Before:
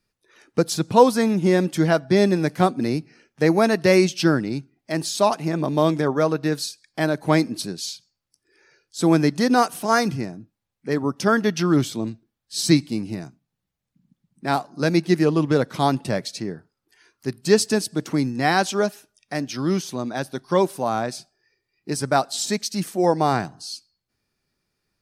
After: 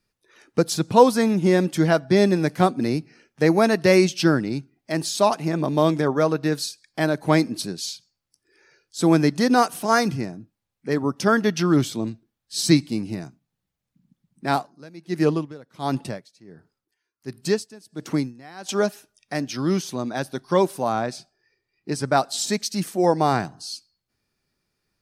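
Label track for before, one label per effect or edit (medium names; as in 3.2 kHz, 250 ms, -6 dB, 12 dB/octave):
14.560000	18.690000	logarithmic tremolo 1.4 Hz, depth 24 dB
20.920000	22.170000	treble shelf 8.7 kHz -10.5 dB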